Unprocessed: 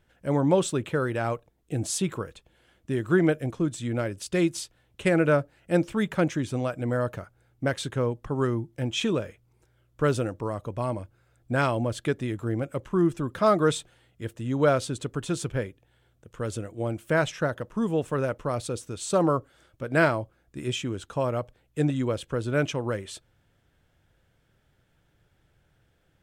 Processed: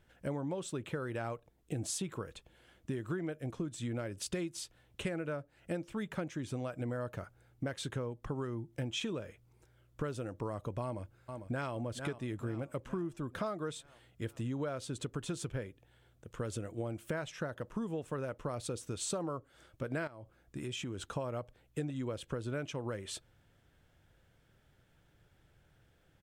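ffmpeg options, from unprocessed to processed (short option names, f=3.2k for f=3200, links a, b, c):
-filter_complex "[0:a]asplit=2[a][b];[b]afade=t=in:st=10.83:d=0.01,afade=t=out:st=11.73:d=0.01,aecho=0:1:450|900|1350|1800|2250|2700:0.199526|0.109739|0.0603567|0.0331962|0.0182579|0.0100418[c];[a][c]amix=inputs=2:normalize=0,asettb=1/sr,asplit=3[d][e][f];[d]atrim=end=20.074[g];[e]atrim=start=20.07:end=21.03,asetpts=PTS-STARTPTS,afade=t=in:d=0.004:c=qsin,afade=t=out:st=0.956:d=0.004:c=qsin,acompressor=threshold=-35dB:ratio=6:attack=3.2:release=140:knee=1:detection=peak[h];[f]atrim=start=21.026[i];[g][h]acrossfade=d=0.004:c1=hsin:c2=qsin[j];[j][i]acrossfade=d=0.004:c1=qsin:c2=hsin,acompressor=threshold=-33dB:ratio=12,volume=-1dB"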